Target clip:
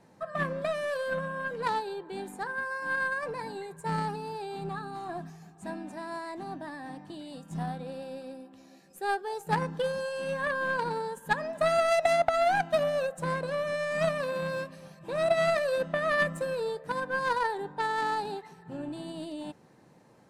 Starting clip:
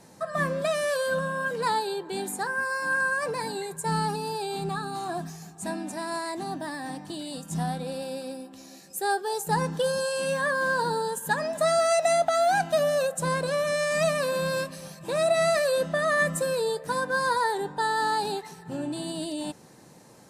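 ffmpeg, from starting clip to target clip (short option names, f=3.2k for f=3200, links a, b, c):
-af "aeval=exprs='0.237*(cos(1*acos(clip(val(0)/0.237,-1,1)))-cos(1*PI/2))+0.0188*(cos(2*acos(clip(val(0)/0.237,-1,1)))-cos(2*PI/2))+0.0473*(cos(3*acos(clip(val(0)/0.237,-1,1)))-cos(3*PI/2))+0.00841*(cos(4*acos(clip(val(0)/0.237,-1,1)))-cos(4*PI/2))':c=same,bass=f=250:g=0,treble=f=4k:g=-12,volume=2dB"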